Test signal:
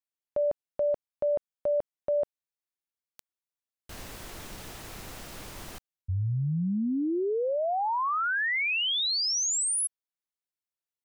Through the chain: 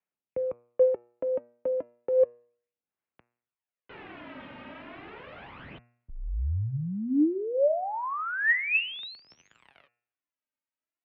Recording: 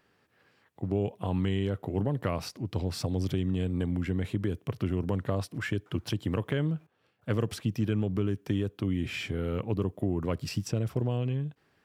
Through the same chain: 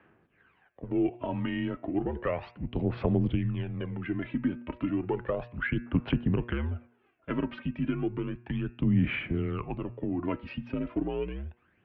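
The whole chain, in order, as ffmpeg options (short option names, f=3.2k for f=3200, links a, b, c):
-af "aphaser=in_gain=1:out_gain=1:delay=3.1:decay=0.63:speed=0.33:type=sinusoidal,highpass=f=160:t=q:w=0.5412,highpass=f=160:t=q:w=1.307,lowpass=f=2.9k:t=q:w=0.5176,lowpass=f=2.9k:t=q:w=0.7071,lowpass=f=2.9k:t=q:w=1.932,afreqshift=-71,bandreject=f=119.8:t=h:w=4,bandreject=f=239.6:t=h:w=4,bandreject=f=359.4:t=h:w=4,bandreject=f=479.2:t=h:w=4,bandreject=f=599:t=h:w=4,bandreject=f=718.8:t=h:w=4,bandreject=f=838.6:t=h:w=4,bandreject=f=958.4:t=h:w=4,bandreject=f=1.0782k:t=h:w=4,bandreject=f=1.198k:t=h:w=4,bandreject=f=1.3178k:t=h:w=4,bandreject=f=1.4376k:t=h:w=4,bandreject=f=1.5574k:t=h:w=4,bandreject=f=1.6772k:t=h:w=4,bandreject=f=1.797k:t=h:w=4,bandreject=f=1.9168k:t=h:w=4,bandreject=f=2.0366k:t=h:w=4,bandreject=f=2.1564k:t=h:w=4,bandreject=f=2.2762k:t=h:w=4,bandreject=f=2.396k:t=h:w=4,bandreject=f=2.5158k:t=h:w=4,bandreject=f=2.6356k:t=h:w=4,bandreject=f=2.7554k:t=h:w=4"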